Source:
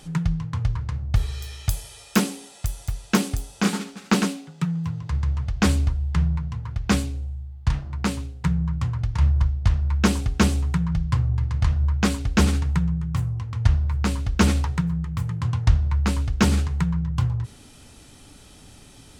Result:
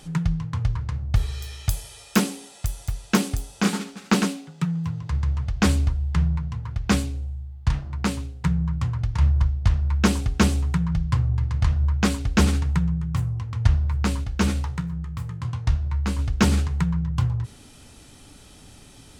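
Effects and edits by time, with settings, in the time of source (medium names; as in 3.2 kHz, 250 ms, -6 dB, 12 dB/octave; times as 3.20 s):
14.24–16.19 s: feedback comb 66 Hz, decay 0.25 s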